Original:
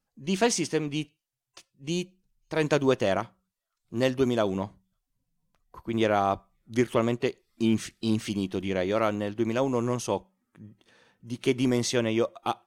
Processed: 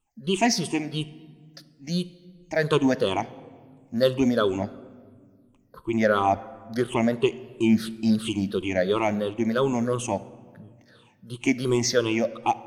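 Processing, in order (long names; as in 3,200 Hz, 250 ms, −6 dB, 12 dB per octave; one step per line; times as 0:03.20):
rippled gain that drifts along the octave scale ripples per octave 0.66, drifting −2.9 Hz, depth 20 dB
on a send: convolution reverb RT60 1.7 s, pre-delay 5 ms, DRR 15.5 dB
on the sum: level −1.5 dB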